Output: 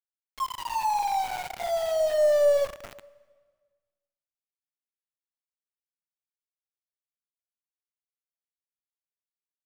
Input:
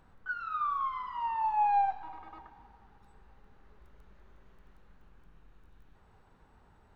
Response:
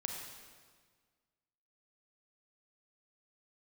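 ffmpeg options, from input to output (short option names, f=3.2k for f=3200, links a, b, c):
-filter_complex "[0:a]asetrate=31752,aresample=44100,aeval=exprs='val(0)*gte(abs(val(0)),0.0141)':c=same,asplit=2[a][b];[1:a]atrim=start_sample=2205[c];[b][c]afir=irnorm=-1:irlink=0,volume=-15dB[d];[a][d]amix=inputs=2:normalize=0,volume=4.5dB"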